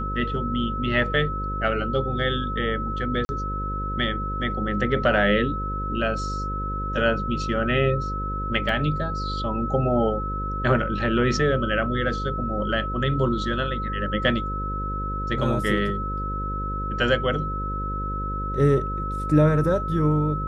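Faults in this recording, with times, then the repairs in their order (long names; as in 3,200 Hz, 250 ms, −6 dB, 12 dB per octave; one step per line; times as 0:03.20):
mains buzz 50 Hz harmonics 11 −30 dBFS
whistle 1,300 Hz −29 dBFS
0:03.25–0:03.29: drop-out 40 ms
0:08.69: drop-out 2.4 ms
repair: hum removal 50 Hz, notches 11
notch filter 1,300 Hz, Q 30
repair the gap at 0:03.25, 40 ms
repair the gap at 0:08.69, 2.4 ms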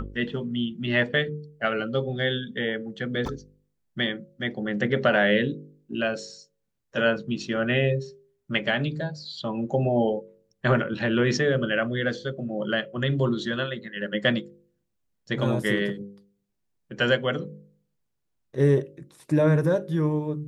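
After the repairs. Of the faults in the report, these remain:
none of them is left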